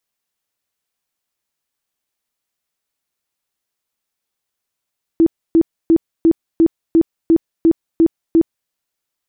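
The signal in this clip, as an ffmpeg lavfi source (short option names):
-f lavfi -i "aevalsrc='0.447*sin(2*PI*329*mod(t,0.35))*lt(mod(t,0.35),21/329)':d=3.5:s=44100"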